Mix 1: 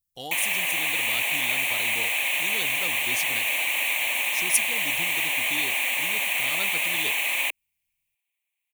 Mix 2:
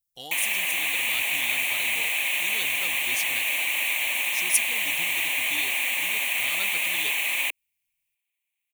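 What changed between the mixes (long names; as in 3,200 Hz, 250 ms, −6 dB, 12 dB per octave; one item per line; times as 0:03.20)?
speech: add low-shelf EQ 440 Hz −7 dB
master: add parametric band 670 Hz −4 dB 1.7 octaves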